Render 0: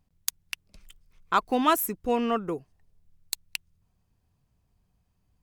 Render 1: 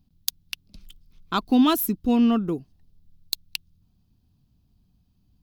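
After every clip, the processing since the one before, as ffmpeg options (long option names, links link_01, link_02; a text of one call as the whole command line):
ffmpeg -i in.wav -af "equalizer=frequency=250:width_type=o:width=1:gain=7,equalizer=frequency=500:width_type=o:width=1:gain=-9,equalizer=frequency=1000:width_type=o:width=1:gain=-6,equalizer=frequency=2000:width_type=o:width=1:gain=-11,equalizer=frequency=4000:width_type=o:width=1:gain=6,equalizer=frequency=8000:width_type=o:width=1:gain=-10,volume=6dB" out.wav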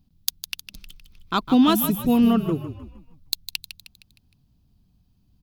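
ffmpeg -i in.wav -filter_complex "[0:a]asplit=6[link_01][link_02][link_03][link_04][link_05][link_06];[link_02]adelay=155,afreqshift=-43,volume=-10.5dB[link_07];[link_03]adelay=310,afreqshift=-86,volume=-17.4dB[link_08];[link_04]adelay=465,afreqshift=-129,volume=-24.4dB[link_09];[link_05]adelay=620,afreqshift=-172,volume=-31.3dB[link_10];[link_06]adelay=775,afreqshift=-215,volume=-38.2dB[link_11];[link_01][link_07][link_08][link_09][link_10][link_11]amix=inputs=6:normalize=0,volume=1.5dB" out.wav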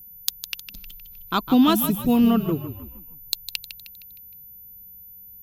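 ffmpeg -i in.wav -af "aeval=exprs='val(0)+0.00794*sin(2*PI*14000*n/s)':channel_layout=same" out.wav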